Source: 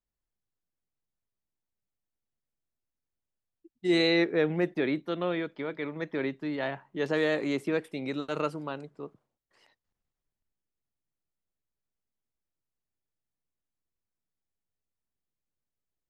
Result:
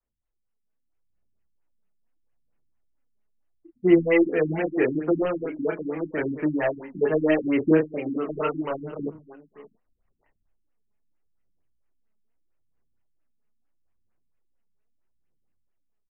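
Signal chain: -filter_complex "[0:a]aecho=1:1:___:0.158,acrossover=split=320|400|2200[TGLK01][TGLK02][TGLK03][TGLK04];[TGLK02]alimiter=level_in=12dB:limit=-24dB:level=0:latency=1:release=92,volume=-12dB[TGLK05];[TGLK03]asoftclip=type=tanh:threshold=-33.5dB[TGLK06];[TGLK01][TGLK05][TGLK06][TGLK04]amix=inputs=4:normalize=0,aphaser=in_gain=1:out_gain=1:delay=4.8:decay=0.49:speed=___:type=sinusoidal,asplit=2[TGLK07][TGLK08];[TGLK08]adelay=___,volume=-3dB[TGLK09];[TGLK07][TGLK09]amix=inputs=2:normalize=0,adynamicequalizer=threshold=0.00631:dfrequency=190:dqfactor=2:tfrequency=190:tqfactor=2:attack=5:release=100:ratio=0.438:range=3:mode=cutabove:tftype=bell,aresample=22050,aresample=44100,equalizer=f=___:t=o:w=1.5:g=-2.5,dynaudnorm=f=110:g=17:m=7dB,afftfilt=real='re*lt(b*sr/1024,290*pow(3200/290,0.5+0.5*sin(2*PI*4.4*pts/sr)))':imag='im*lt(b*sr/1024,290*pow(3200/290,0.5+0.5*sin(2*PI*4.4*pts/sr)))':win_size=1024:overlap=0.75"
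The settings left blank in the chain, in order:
566, 0.78, 32, 130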